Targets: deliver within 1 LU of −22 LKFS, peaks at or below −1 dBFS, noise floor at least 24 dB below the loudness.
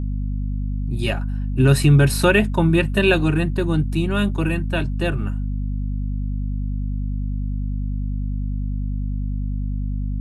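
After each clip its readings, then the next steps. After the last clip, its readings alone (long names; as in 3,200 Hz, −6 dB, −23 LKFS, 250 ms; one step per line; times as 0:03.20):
mains hum 50 Hz; hum harmonics up to 250 Hz; level of the hum −21 dBFS; integrated loudness −21.5 LKFS; sample peak −3.5 dBFS; target loudness −22.0 LKFS
→ hum removal 50 Hz, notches 5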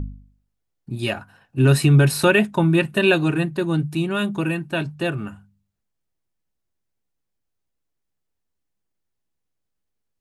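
mains hum none found; integrated loudness −19.5 LKFS; sample peak −4.5 dBFS; target loudness −22.0 LKFS
→ level −2.5 dB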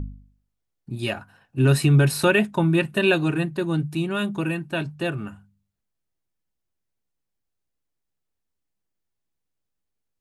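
integrated loudness −22.0 LKFS; sample peak −7.0 dBFS; background noise floor −80 dBFS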